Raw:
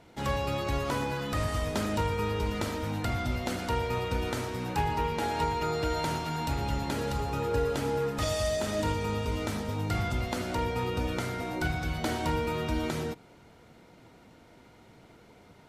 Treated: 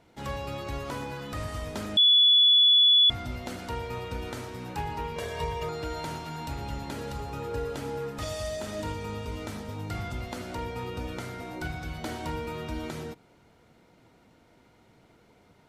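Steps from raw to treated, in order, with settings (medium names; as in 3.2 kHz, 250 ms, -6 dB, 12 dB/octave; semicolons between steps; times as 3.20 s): 1.97–3.10 s: bleep 3.42 kHz -11 dBFS; 5.16–5.69 s: comb 1.8 ms, depth 99%; trim -4.5 dB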